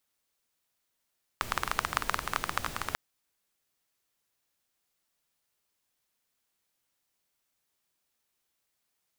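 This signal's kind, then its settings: rain from filtered ticks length 1.54 s, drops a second 17, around 1200 Hz, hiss -7 dB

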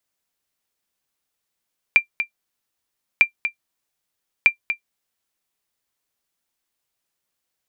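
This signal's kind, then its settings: sonar ping 2370 Hz, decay 0.10 s, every 1.25 s, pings 3, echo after 0.24 s, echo -10 dB -3 dBFS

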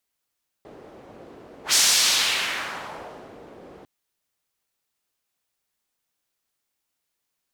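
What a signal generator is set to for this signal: whoosh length 3.20 s, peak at 1.09, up 0.11 s, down 1.84 s, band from 430 Hz, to 5800 Hz, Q 1.3, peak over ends 28 dB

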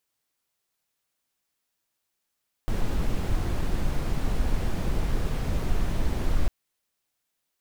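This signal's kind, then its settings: noise brown, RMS -23.5 dBFS 3.80 s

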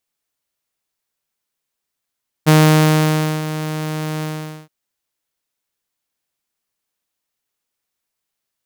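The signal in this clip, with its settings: ADSR saw 155 Hz, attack 25 ms, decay 0.934 s, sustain -14 dB, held 1.76 s, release 0.462 s -4.5 dBFS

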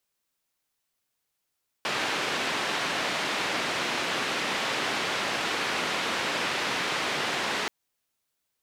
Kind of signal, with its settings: noise band 190–2900 Hz, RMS -29 dBFS 5.83 s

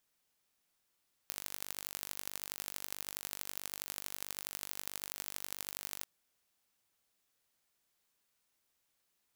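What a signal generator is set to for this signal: pulse train 49.2/s, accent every 4, -11 dBFS 4.74 s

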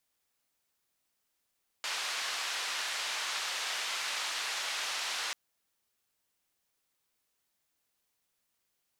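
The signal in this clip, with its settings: noise band 870–4700 Hz, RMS -35.5 dBFS 3.49 s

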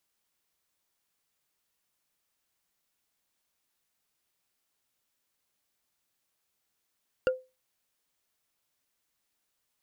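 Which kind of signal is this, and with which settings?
wood hit, lowest mode 514 Hz, decay 0.26 s, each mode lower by 6.5 dB, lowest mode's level -18.5 dB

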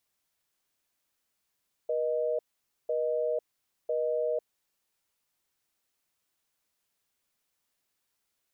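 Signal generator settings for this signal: call progress tone busy tone, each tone -29 dBFS 2.82 s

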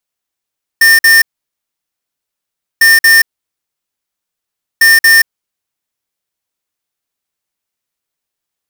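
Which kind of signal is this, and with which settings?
beep pattern square 1810 Hz, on 0.18 s, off 0.05 s, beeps 2, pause 1.59 s, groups 3, -5.5 dBFS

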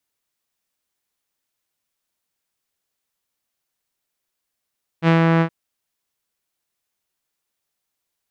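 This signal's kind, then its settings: synth note saw E3 12 dB/oct, low-pass 1900 Hz, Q 1.2, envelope 0.5 oct, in 0.26 s, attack 58 ms, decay 0.11 s, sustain -2 dB, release 0.08 s, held 0.39 s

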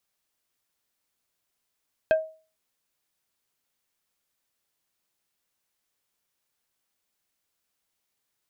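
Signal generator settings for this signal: wood hit plate, lowest mode 635 Hz, decay 0.37 s, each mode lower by 8 dB, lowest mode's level -14 dB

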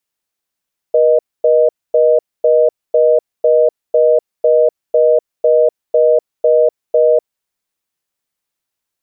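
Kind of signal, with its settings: call progress tone reorder tone, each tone -10 dBFS 6.41 s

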